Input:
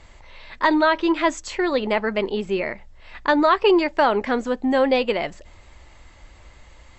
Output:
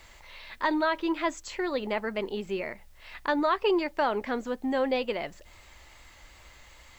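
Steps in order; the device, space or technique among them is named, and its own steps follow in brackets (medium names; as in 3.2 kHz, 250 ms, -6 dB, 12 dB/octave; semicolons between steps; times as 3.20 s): noise-reduction cassette on a plain deck (tape noise reduction on one side only encoder only; wow and flutter 20 cents; white noise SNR 38 dB); trim -8.5 dB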